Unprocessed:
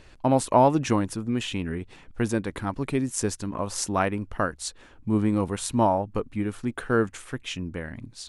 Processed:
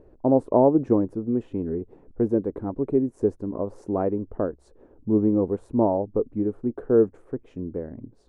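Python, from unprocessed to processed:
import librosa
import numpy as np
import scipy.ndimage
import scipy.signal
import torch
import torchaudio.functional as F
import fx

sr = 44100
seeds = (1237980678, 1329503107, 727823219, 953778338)

y = fx.curve_eq(x, sr, hz=(150.0, 430.0, 3200.0), db=(0, 11, -29))
y = y * librosa.db_to_amplitude(-3.0)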